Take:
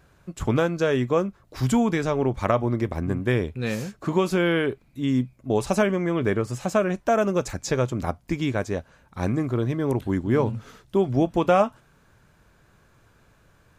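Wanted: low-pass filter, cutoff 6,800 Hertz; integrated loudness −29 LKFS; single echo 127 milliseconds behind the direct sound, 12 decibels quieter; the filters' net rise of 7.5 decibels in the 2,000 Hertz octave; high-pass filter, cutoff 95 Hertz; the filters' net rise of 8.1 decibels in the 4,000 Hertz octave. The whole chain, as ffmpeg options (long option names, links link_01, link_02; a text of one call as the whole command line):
ffmpeg -i in.wav -af "highpass=95,lowpass=6800,equalizer=frequency=2000:width_type=o:gain=8,equalizer=frequency=4000:width_type=o:gain=8,aecho=1:1:127:0.251,volume=-6dB" out.wav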